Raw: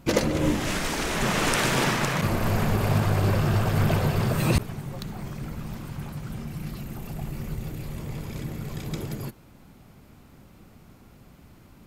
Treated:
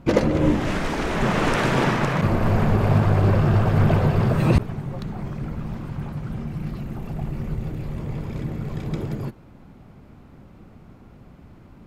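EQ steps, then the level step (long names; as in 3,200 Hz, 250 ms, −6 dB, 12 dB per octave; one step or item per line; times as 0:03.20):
low-pass filter 1,400 Hz 6 dB per octave
+5.0 dB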